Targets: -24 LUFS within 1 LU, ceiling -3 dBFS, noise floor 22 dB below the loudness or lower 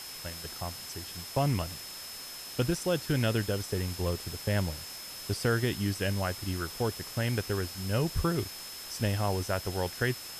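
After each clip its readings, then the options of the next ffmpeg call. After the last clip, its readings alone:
steady tone 5200 Hz; tone level -44 dBFS; noise floor -43 dBFS; noise floor target -54 dBFS; loudness -32.0 LUFS; peak -14.5 dBFS; loudness target -24.0 LUFS
-> -af "bandreject=f=5.2k:w=30"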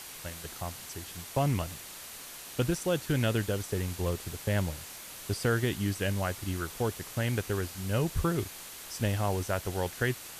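steady tone none; noise floor -45 dBFS; noise floor target -55 dBFS
-> -af "afftdn=nr=10:nf=-45"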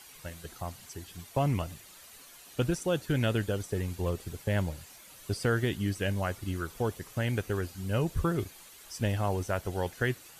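noise floor -52 dBFS; noise floor target -54 dBFS
-> -af "afftdn=nr=6:nf=-52"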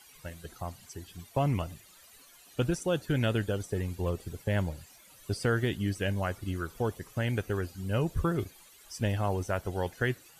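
noise floor -57 dBFS; loudness -32.0 LUFS; peak -14.5 dBFS; loudness target -24.0 LUFS
-> -af "volume=8dB"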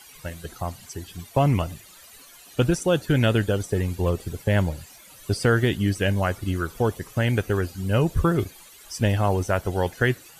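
loudness -24.0 LUFS; peak -6.5 dBFS; noise floor -49 dBFS

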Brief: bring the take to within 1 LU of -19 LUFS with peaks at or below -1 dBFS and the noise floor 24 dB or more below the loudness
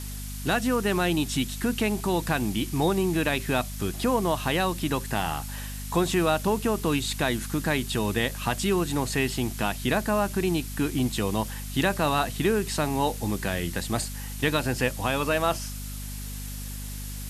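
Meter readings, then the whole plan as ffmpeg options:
hum 50 Hz; harmonics up to 250 Hz; hum level -34 dBFS; noise floor -35 dBFS; noise floor target -51 dBFS; loudness -27.0 LUFS; peak -10.0 dBFS; loudness target -19.0 LUFS
-> -af "bandreject=f=50:t=h:w=6,bandreject=f=100:t=h:w=6,bandreject=f=150:t=h:w=6,bandreject=f=200:t=h:w=6,bandreject=f=250:t=h:w=6"
-af "afftdn=nr=16:nf=-35"
-af "volume=8dB"

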